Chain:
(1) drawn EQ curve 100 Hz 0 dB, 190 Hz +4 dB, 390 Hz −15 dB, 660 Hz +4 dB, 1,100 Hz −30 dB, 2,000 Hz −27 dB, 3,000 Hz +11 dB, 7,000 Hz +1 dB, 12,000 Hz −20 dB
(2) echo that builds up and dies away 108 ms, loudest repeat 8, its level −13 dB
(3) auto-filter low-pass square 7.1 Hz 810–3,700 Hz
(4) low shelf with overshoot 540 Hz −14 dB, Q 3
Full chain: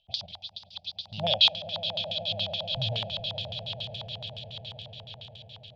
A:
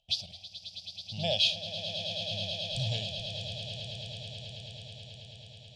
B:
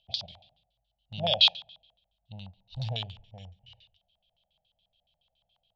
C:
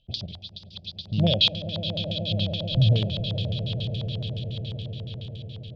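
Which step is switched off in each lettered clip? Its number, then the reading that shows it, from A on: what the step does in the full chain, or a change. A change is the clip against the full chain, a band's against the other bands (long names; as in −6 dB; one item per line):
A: 3, 1 kHz band −5.0 dB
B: 2, change in momentary loudness spread +2 LU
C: 4, change in crest factor −6.0 dB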